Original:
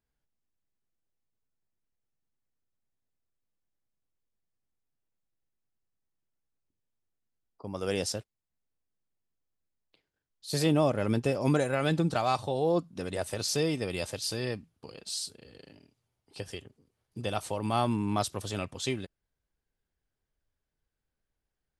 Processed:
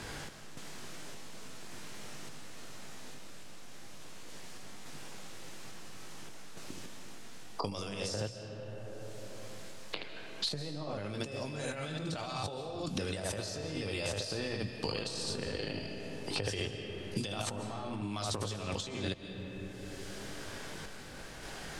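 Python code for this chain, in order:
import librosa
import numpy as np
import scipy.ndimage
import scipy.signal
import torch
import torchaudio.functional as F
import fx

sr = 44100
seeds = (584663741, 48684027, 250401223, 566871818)

y = scipy.signal.sosfilt(scipy.signal.butter(2, 7900.0, 'lowpass', fs=sr, output='sos'), x)
y = fx.low_shelf(y, sr, hz=120.0, db=11.0)
y = fx.hum_notches(y, sr, base_hz=60, count=2)
y = fx.room_early_taps(y, sr, ms=(20, 75), db=(-5.5, -6.0))
y = fx.tremolo_random(y, sr, seeds[0], hz=3.5, depth_pct=55)
y = fx.low_shelf(y, sr, hz=330.0, db=-7.0)
y = fx.over_compress(y, sr, threshold_db=-46.0, ratio=-1.0)
y = fx.rev_freeverb(y, sr, rt60_s=1.9, hf_ratio=0.55, predelay_ms=95, drr_db=9.5)
y = fx.band_squash(y, sr, depth_pct=100)
y = y * 10.0 ** (5.0 / 20.0)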